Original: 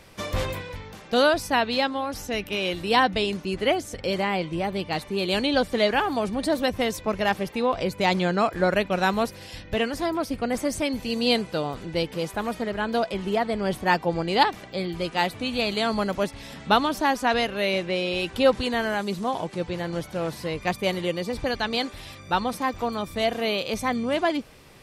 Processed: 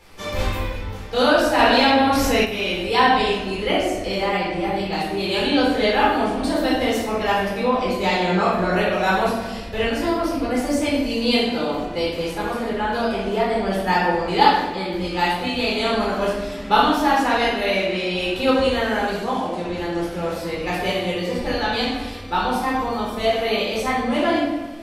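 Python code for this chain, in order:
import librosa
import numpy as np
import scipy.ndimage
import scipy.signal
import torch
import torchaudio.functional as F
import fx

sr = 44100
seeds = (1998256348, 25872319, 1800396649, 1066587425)

p1 = fx.peak_eq(x, sr, hz=140.0, db=-13.5, octaves=0.53)
p2 = p1 + fx.echo_single(p1, sr, ms=364, db=-21.0, dry=0)
p3 = fx.room_shoebox(p2, sr, seeds[0], volume_m3=530.0, walls='mixed', distance_m=4.1)
p4 = fx.env_flatten(p3, sr, amount_pct=50, at=(1.58, 2.44), fade=0.02)
y = p4 * 10.0 ** (-5.5 / 20.0)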